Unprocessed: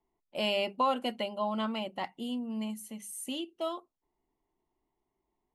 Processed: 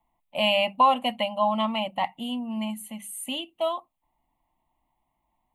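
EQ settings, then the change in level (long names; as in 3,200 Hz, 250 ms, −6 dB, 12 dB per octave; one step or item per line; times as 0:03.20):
parametric band 920 Hz +3 dB 2.7 octaves
phaser with its sweep stopped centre 1,500 Hz, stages 6
+8.0 dB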